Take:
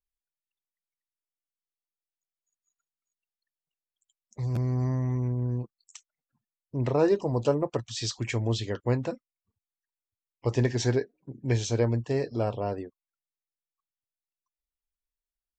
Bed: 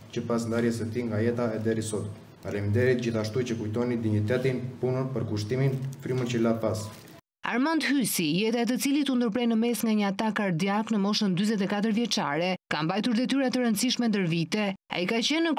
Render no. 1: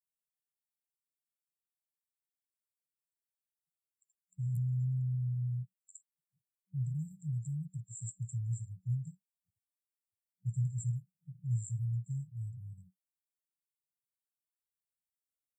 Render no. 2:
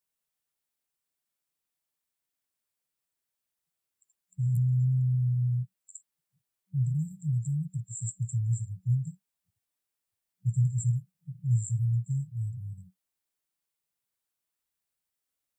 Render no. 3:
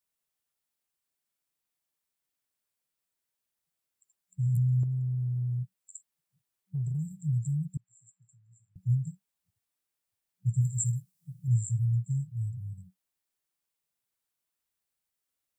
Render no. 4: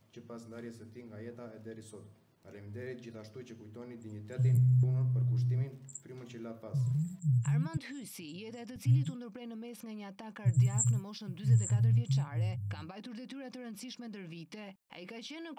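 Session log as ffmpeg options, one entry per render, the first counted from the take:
-af "afftfilt=real='re*(1-between(b*sr/4096,190,7200))':imag='im*(1-between(b*sr/4096,190,7200))':win_size=4096:overlap=0.75,highpass=150"
-af "volume=7.5dB"
-filter_complex "[0:a]asettb=1/sr,asplit=3[a][b][c];[a]atrim=end=4.834[d];[b]atrim=start=4.83:end=7.21,asetpts=PTS-STARTPTS,afade=t=in:d=0.004:c=qsin,afade=t=out:st=2.376:d=0.004:c=qsin,acompressor=threshold=-28dB:ratio=6:attack=3.2:release=140:knee=1:detection=peak[e];[c]atrim=start=7.206[f];[d][e]acrossfade=d=0.004:c1=hsin:c2=qsin[g];[g][f]acrossfade=d=0.004:c1=qsin:c2=hsin,asettb=1/sr,asplit=3[h][i][j];[h]atrim=end=7.774[k];[i]atrim=start=7.77:end=8.76,asetpts=PTS-STARTPTS,afade=t=in:d=0.004:c=qsin,afade=t=out:st=0.986:d=0.004:c=qsin,highpass=780,lowpass=2.3k[l];[j]atrim=start=8.756[m];[k][l]acrossfade=d=0.004:c1=hsin:c2=qsin[n];[n][m]acrossfade=d=0.004:c1=qsin:c2=hsin,asettb=1/sr,asplit=3[o][p][q];[o]atrim=end=10.614[r];[p]atrim=start=10.61:end=11.48,asetpts=PTS-STARTPTS,afade=t=in:d=0.004:c=qsin,afade=t=out:st=0.866:d=0.004:c=qsin,bass=f=250:g=-3,treble=f=4k:g=9[s];[q]atrim=start=11.476[t];[r][s]acrossfade=d=0.004:c1=hsin:c2=qsin[u];[u][t]acrossfade=d=0.004:c1=qsin:c2=hsin"
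-filter_complex "[1:a]volume=-19.5dB[a];[0:a][a]amix=inputs=2:normalize=0"

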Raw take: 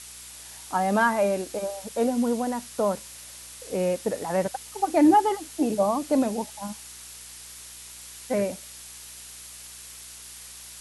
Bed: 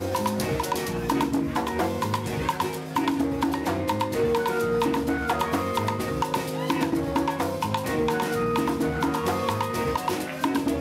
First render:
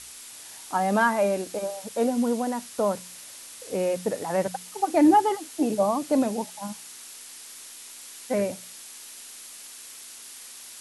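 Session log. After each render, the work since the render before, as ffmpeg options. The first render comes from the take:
-af "bandreject=f=60:t=h:w=4,bandreject=f=120:t=h:w=4,bandreject=f=180:t=h:w=4"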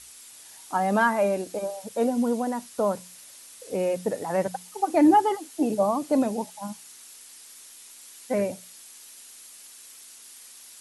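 -af "afftdn=nr=6:nf=-44"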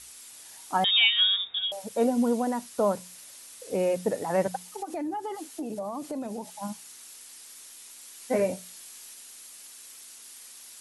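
-filter_complex "[0:a]asettb=1/sr,asplit=3[a][b][c];[a]atrim=end=0.844[d];[b]atrim=start=0.84:end=1.72,asetpts=PTS-STARTPTS,afade=t=in:d=0.004:c=qsin,afade=t=out:st=0.876:d=0.004:c=qsin,lowpass=f=3.3k:t=q:w=0.5098,lowpass=f=3.3k:t=q:w=0.6013,lowpass=f=3.3k:t=q:w=0.9,lowpass=f=3.3k:t=q:w=2.563,afreqshift=-3900[e];[c]atrim=start=1.716[f];[d][e]acrossfade=d=0.004:c1=hsin:c2=qsin[g];[g][f]acrossfade=d=0.004:c1=qsin:c2=hsin,asettb=1/sr,asplit=3[h][i][j];[h]atrim=end=4.724[k];[i]atrim=start=4.72:end=6.63,asetpts=PTS-STARTPTS,afade=t=in:d=0.004:c=qsin,afade=t=out:st=1.906:d=0.004:c=qsin,acompressor=threshold=-31dB:ratio=6:attack=3.2:release=140:knee=1:detection=peak[l];[j]atrim=start=6.626[m];[k][l]acrossfade=d=0.004:c1=hsin:c2=qsin[n];[n][m]acrossfade=d=0.004:c1=qsin:c2=hsin,asettb=1/sr,asplit=3[o][p][q];[o]atrim=end=8.184[r];[p]atrim=start=8.18:end=9.14,asetpts=PTS-STARTPTS,afade=t=in:d=0.004:c=qsin,afade=t=out:st=0.956:d=0.004:c=qsin,asplit=2[s][t];[t]adelay=22,volume=-5.5dB[u];[s][u]amix=inputs=2:normalize=0,atrim=end_sample=42336[v];[q]atrim=start=9.136[w];[r][v]acrossfade=d=0.004:c1=hsin:c2=qsin[x];[x][w]acrossfade=d=0.004:c1=qsin:c2=hsin"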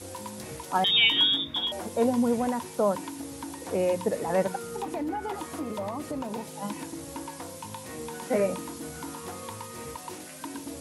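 -filter_complex "[1:a]volume=-14dB[a];[0:a][a]amix=inputs=2:normalize=0"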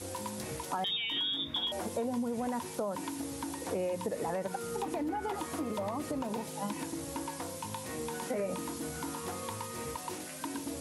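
-af "alimiter=limit=-20.5dB:level=0:latency=1:release=78,acompressor=threshold=-31dB:ratio=4"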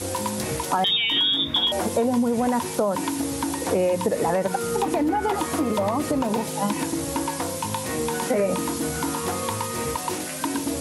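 -af "volume=12dB"

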